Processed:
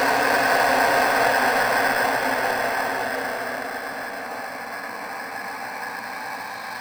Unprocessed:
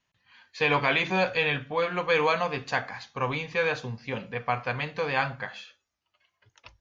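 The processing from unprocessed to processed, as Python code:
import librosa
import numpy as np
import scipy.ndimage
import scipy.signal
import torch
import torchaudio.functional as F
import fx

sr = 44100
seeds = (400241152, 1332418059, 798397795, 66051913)

p1 = fx.paulstretch(x, sr, seeds[0], factor=29.0, window_s=0.25, from_s=2.73)
p2 = fx.low_shelf_res(p1, sr, hz=190.0, db=-13.5, q=1.5)
p3 = fx.sample_hold(p2, sr, seeds[1], rate_hz=3400.0, jitter_pct=0)
p4 = p2 + F.gain(torch.from_numpy(p3), -4.0).numpy()
y = F.gain(torch.from_numpy(p4), 4.5).numpy()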